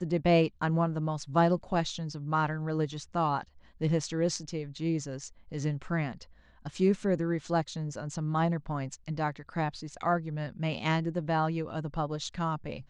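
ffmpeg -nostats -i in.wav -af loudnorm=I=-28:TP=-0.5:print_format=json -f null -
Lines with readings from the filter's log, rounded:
"input_i" : "-31.2",
"input_tp" : "-12.5",
"input_lra" : "2.1",
"input_thresh" : "-41.4",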